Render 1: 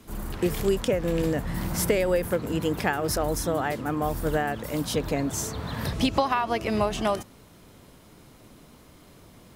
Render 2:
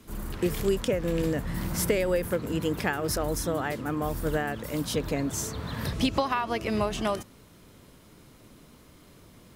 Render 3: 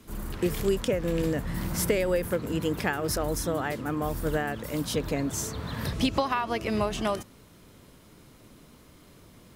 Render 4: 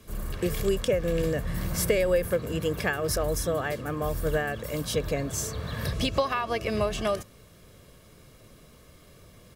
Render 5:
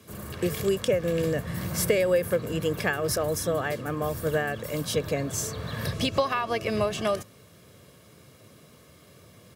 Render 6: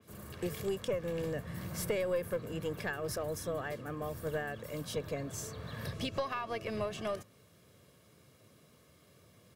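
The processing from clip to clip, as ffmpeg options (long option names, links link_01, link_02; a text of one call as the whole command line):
ffmpeg -i in.wav -af "equalizer=frequency=760:width=2.5:gain=-4,volume=-1.5dB" out.wav
ffmpeg -i in.wav -af anull out.wav
ffmpeg -i in.wav -af "bandreject=frequency=1000:width=9.8,aecho=1:1:1.8:0.46" out.wav
ffmpeg -i in.wav -af "highpass=frequency=84:width=0.5412,highpass=frequency=84:width=1.3066,volume=1dB" out.wav
ffmpeg -i in.wav -af "aeval=exprs='(tanh(5.01*val(0)+0.3)-tanh(0.3))/5.01':channel_layout=same,adynamicequalizer=threshold=0.00562:dfrequency=3400:dqfactor=0.7:tfrequency=3400:tqfactor=0.7:attack=5:release=100:ratio=0.375:range=1.5:mode=cutabove:tftype=highshelf,volume=-8.5dB" out.wav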